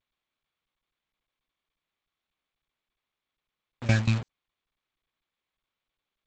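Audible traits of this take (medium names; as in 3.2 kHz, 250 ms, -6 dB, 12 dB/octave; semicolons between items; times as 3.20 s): phasing stages 12, 1.4 Hz, lowest notch 540–2100 Hz; a quantiser's noise floor 6-bit, dither none; tremolo saw down 5.4 Hz, depth 90%; G.722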